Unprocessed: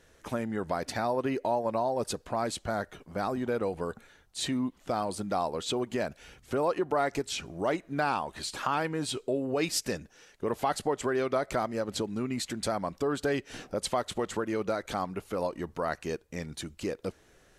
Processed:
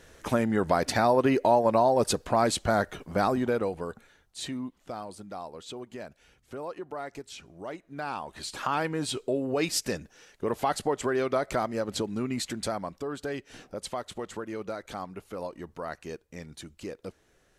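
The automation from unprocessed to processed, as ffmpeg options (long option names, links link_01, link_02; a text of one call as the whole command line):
ffmpeg -i in.wav -af "volume=18dB,afade=type=out:start_time=3.16:duration=0.63:silence=0.398107,afade=type=out:start_time=3.79:duration=1.42:silence=0.375837,afade=type=in:start_time=7.88:duration=0.95:silence=0.281838,afade=type=out:start_time=12.46:duration=0.57:silence=0.473151" out.wav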